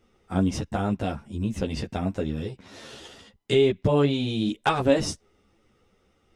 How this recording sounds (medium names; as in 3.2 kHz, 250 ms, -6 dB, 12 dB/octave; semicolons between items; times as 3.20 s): a shimmering, thickened sound